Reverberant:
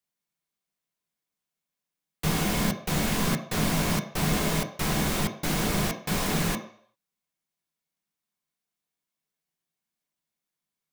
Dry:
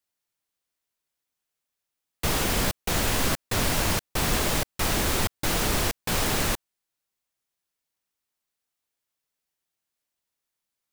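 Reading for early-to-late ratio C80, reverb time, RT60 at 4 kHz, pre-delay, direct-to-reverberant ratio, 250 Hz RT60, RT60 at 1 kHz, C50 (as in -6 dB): 13.0 dB, 0.60 s, 0.55 s, 3 ms, 3.0 dB, 0.40 s, 0.60 s, 10.5 dB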